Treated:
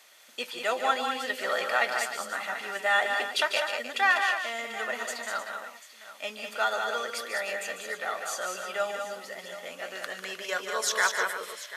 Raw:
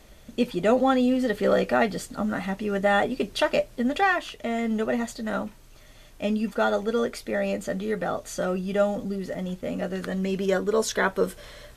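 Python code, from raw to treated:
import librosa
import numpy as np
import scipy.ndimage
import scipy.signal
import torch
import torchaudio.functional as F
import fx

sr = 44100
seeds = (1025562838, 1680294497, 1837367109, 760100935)

p1 = scipy.signal.sosfilt(scipy.signal.butter(2, 1100.0, 'highpass', fs=sr, output='sos'), x)
p2 = p1 + fx.echo_multitap(p1, sr, ms=(147, 197, 308, 741), db=(-9.5, -5.5, -12.0, -15.0), dry=0)
y = p2 * 10.0 ** (2.0 / 20.0)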